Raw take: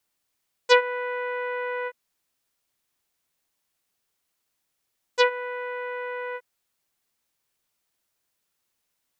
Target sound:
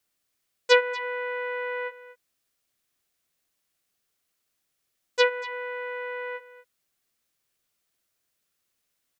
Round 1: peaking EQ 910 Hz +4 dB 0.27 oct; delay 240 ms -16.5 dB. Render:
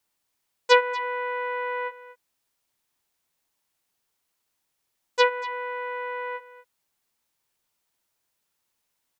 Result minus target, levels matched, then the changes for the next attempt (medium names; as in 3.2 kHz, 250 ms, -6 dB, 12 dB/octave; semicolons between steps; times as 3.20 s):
1 kHz band +5.0 dB
change: peaking EQ 910 Hz -7.5 dB 0.27 oct